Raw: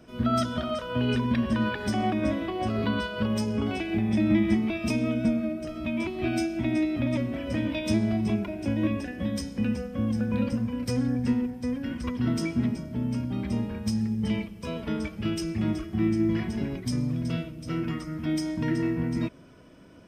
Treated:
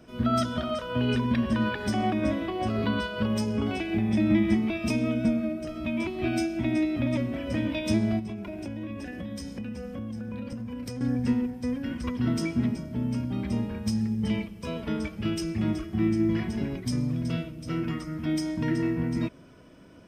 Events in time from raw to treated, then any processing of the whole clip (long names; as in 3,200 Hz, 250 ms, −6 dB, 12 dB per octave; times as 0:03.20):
0:08.19–0:11.01: downward compressor, threshold −32 dBFS